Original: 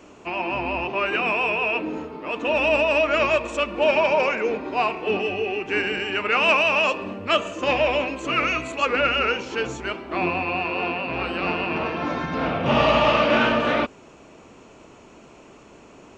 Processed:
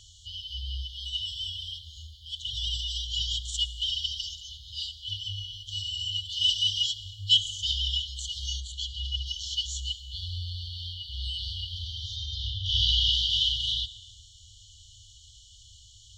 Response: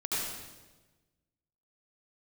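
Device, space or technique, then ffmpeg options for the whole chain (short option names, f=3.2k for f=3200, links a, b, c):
compressed reverb return: -filter_complex "[0:a]asettb=1/sr,asplit=3[a][b][c];[a]atrim=end=12.164[d];[b]atrim=start=12.16:end=13.12,asetpts=PTS-STARTPTS,afade=t=in:d=0.004:c=qsin,afade=t=out:st=0.956:d=0.004:c=qsin,lowpass=f=6.5k:w=0.5412,lowpass=f=6.5k:w=1.3066[e];[c]atrim=start=13.116[f];[d][e]acrossfade=d=0.004:c1=hsin:c2=qsin[g];[g][f]acrossfade=d=0.004:c1=qsin:c2=hsin,asplit=2[h][i];[1:a]atrim=start_sample=2205[j];[i][j]afir=irnorm=-1:irlink=0,acompressor=threshold=-15dB:ratio=6,volume=-18dB[k];[h][k]amix=inputs=2:normalize=0,asettb=1/sr,asplit=3[l][m][n];[l]atrim=end=8.604[o];[m]atrim=start=8.6:end=9.26,asetpts=PTS-STARTPTS,afade=t=in:d=0.004:c=qsin,afade=t=out:st=0.656:d=0.004:c=qsin,aemphasis=mode=reproduction:type=50fm[p];[n]atrim=start=9.256[q];[o][p]acrossfade=d=0.004:c1=hsin:c2=qsin[r];[r][q]acrossfade=d=0.004:c1=qsin:c2=hsin,afftfilt=real='re*(1-between(b*sr/4096,110,2900))':imag='im*(1-between(b*sr/4096,110,2900))':win_size=4096:overlap=0.75,equalizer=f=3.8k:t=o:w=0.61:g=5,volume=5dB"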